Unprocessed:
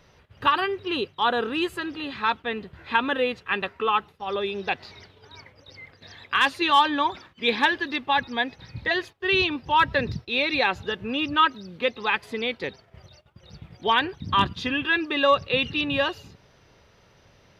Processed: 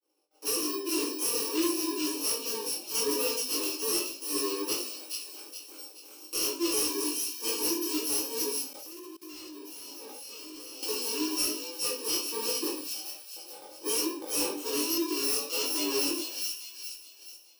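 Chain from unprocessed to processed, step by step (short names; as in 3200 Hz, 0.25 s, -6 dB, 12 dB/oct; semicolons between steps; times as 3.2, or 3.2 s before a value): FFT order left unsorted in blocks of 64 samples; bell 1800 Hz -12 dB 1 oct; shoebox room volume 42 m³, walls mixed, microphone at 0.8 m; expander -43 dBFS; AGC gain up to 9 dB; elliptic high-pass 290 Hz, stop band 40 dB; high shelf 6500 Hz -10.5 dB; thin delay 0.422 s, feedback 42%, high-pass 2600 Hz, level -5.5 dB; soft clip -20 dBFS, distortion -12 dB; chorus 1.2 Hz, delay 18 ms, depth 5 ms; 8.73–10.83 level quantiser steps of 22 dB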